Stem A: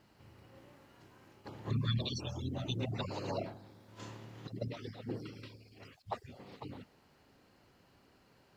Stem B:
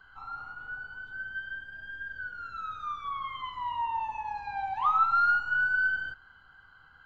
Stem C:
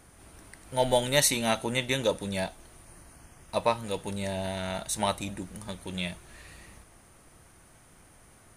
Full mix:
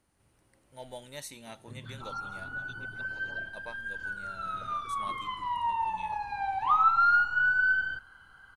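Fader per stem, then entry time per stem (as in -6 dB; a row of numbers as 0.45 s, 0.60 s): -12.5 dB, +1.5 dB, -19.5 dB; 0.00 s, 1.85 s, 0.00 s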